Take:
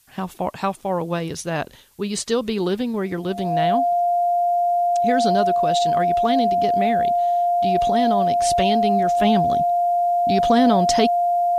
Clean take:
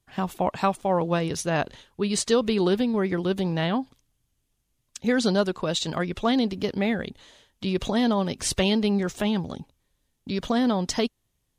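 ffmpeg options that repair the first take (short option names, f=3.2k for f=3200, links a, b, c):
-af "bandreject=f=700:w=30,agate=range=-21dB:threshold=-24dB,asetnsamples=n=441:p=0,asendcmd='9.22 volume volume -5.5dB',volume=0dB"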